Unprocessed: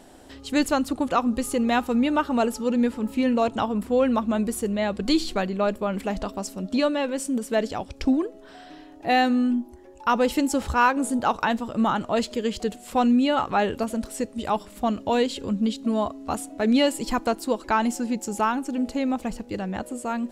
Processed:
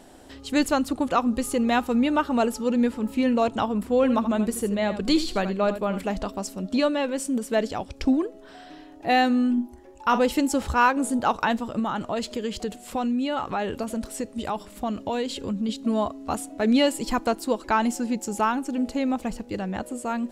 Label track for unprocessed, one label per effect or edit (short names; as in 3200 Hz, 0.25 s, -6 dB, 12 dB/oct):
3.950000	6.030000	echo 80 ms -11.5 dB
9.530000	10.200000	doubler 45 ms -10 dB
11.790000	15.690000	compressor 3:1, threshold -24 dBFS